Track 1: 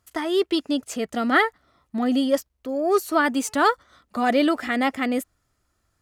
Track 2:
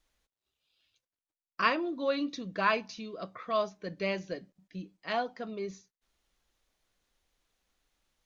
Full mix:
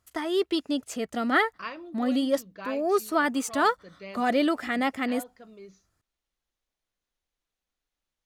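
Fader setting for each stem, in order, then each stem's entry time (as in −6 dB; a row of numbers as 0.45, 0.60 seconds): −4.0, −10.0 decibels; 0.00, 0.00 seconds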